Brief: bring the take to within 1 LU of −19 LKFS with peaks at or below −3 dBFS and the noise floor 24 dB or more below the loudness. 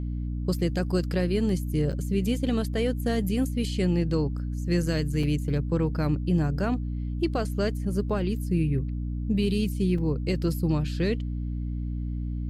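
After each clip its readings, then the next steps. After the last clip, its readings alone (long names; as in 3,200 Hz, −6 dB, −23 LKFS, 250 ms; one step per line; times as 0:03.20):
number of dropouts 3; longest dropout 3.8 ms; mains hum 60 Hz; hum harmonics up to 300 Hz; level of the hum −28 dBFS; integrated loudness −27.5 LKFS; sample peak −14.0 dBFS; target loudness −19.0 LKFS
→ repair the gap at 0:01.92/0:05.23/0:09.98, 3.8 ms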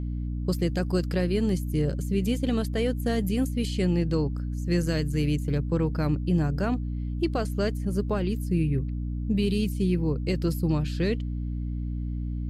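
number of dropouts 0; mains hum 60 Hz; hum harmonics up to 300 Hz; level of the hum −28 dBFS
→ mains-hum notches 60/120/180/240/300 Hz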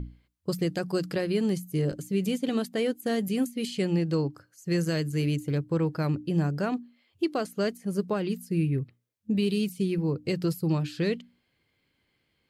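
mains hum none found; integrated loudness −29.0 LKFS; sample peak −15.0 dBFS; target loudness −19.0 LKFS
→ level +10 dB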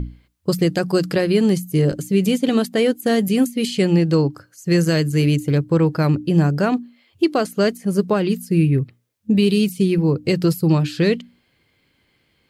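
integrated loudness −19.0 LKFS; sample peak −5.0 dBFS; background noise floor −64 dBFS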